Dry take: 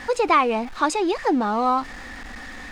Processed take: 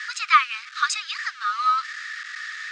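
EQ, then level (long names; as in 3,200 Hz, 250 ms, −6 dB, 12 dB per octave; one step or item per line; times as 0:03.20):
Chebyshev high-pass with heavy ripple 1,200 Hz, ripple 3 dB
low-pass filter 7,400 Hz 24 dB per octave
+6.5 dB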